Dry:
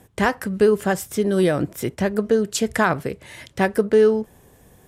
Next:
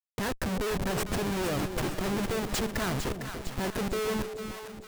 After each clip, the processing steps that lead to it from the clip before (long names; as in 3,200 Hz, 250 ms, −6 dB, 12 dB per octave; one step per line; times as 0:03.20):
comparator with hysteresis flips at −28 dBFS
echo with a time of its own for lows and highs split 670 Hz, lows 290 ms, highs 454 ms, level −7.5 dB
level −9 dB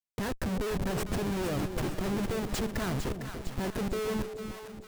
low-shelf EQ 490 Hz +5 dB
level −4.5 dB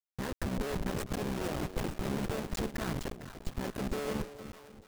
sub-harmonics by changed cycles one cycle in 3, muted
expander for the loud parts 1.5 to 1, over −43 dBFS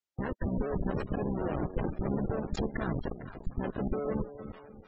low-pass filter 7,300 Hz 24 dB per octave
gate on every frequency bin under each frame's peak −20 dB strong
level +3 dB